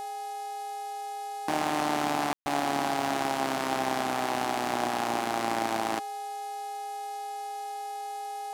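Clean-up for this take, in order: de-hum 420.1 Hz, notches 31; notch 800 Hz, Q 30; room tone fill 2.33–2.46; noise print and reduce 30 dB

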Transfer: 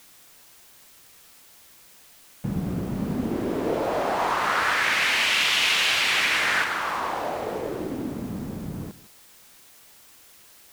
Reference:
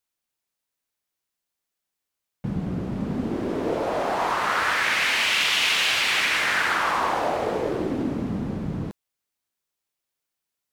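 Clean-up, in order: noise print and reduce 30 dB; inverse comb 0.156 s -18 dB; gain 0 dB, from 6.64 s +4.5 dB

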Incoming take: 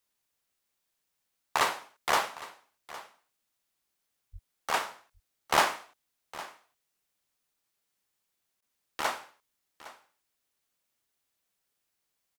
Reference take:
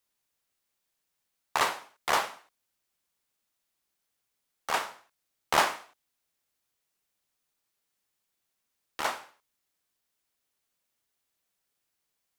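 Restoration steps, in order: 4.32–4.44 HPF 140 Hz 24 dB/oct; interpolate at 8.61, 11 ms; inverse comb 0.81 s -17.5 dB

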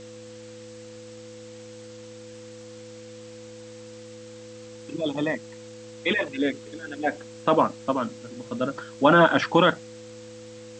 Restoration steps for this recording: de-hum 109.8 Hz, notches 3; notch 500 Hz, Q 30; denoiser 27 dB, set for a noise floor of -43 dBFS

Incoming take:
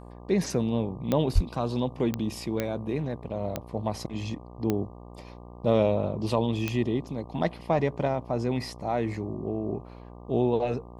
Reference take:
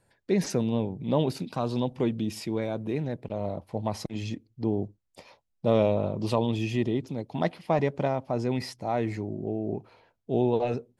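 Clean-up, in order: de-click; de-hum 59.8 Hz, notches 20; de-plosive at 1.34

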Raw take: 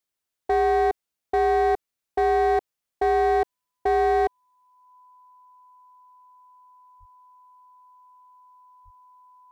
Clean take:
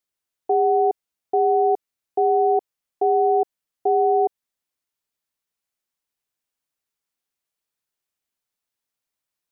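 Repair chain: clip repair -17 dBFS; notch 1000 Hz, Q 30; de-plosive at 6.99/8.84

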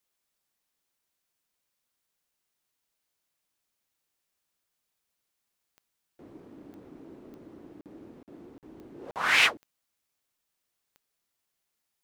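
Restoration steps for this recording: de-click; interpolate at 7.81/8.23/8.58/9.11, 48 ms

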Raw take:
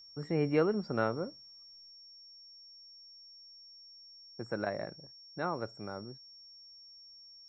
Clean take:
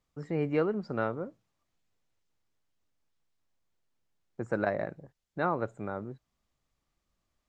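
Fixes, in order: notch 5500 Hz, Q 30; gain correction +5.5 dB, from 1.91

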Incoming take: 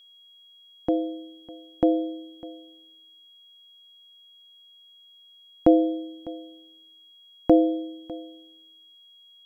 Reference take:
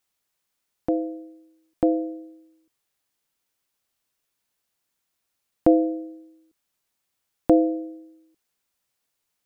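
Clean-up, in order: notch 3300 Hz, Q 30; inverse comb 0.602 s -19.5 dB

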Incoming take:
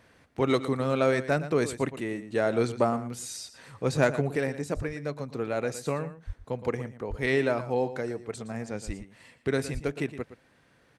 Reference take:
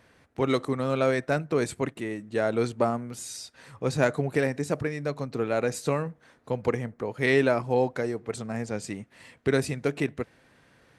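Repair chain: de-plosive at 4.75/6.26/7.09/8.86/9.73; inverse comb 0.116 s -13.5 dB; gain correction +3.5 dB, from 4.34

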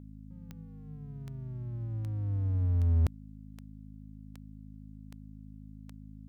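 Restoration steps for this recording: de-click; de-hum 52.5 Hz, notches 5

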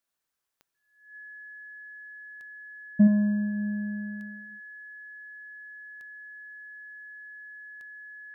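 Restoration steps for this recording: de-click; notch 1700 Hz, Q 30; expander -65 dBFS, range -21 dB; inverse comb 75 ms -6.5 dB

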